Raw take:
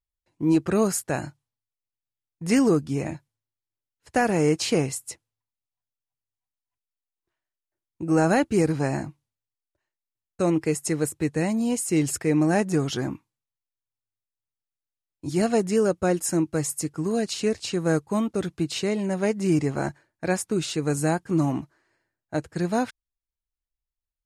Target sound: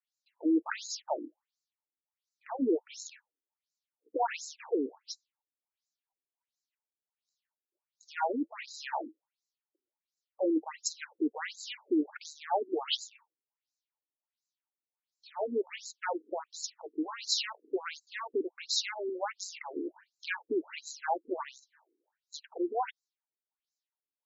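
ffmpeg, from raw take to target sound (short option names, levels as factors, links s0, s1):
-filter_complex "[0:a]acrossover=split=4300[s0][s1];[s1]acompressor=threshold=0.00447:ratio=4:attack=1:release=60[s2];[s0][s2]amix=inputs=2:normalize=0,equalizer=f=900:w=3.9:g=12.5,acompressor=threshold=0.0631:ratio=2,aeval=exprs='clip(val(0),-1,0.0668)':c=same,crystalizer=i=4:c=0,afftfilt=real='re*between(b*sr/1024,320*pow(5500/320,0.5+0.5*sin(2*PI*1.4*pts/sr))/1.41,320*pow(5500/320,0.5+0.5*sin(2*PI*1.4*pts/sr))*1.41)':imag='im*between(b*sr/1024,320*pow(5500/320,0.5+0.5*sin(2*PI*1.4*pts/sr))/1.41,320*pow(5500/320,0.5+0.5*sin(2*PI*1.4*pts/sr))*1.41)':win_size=1024:overlap=0.75"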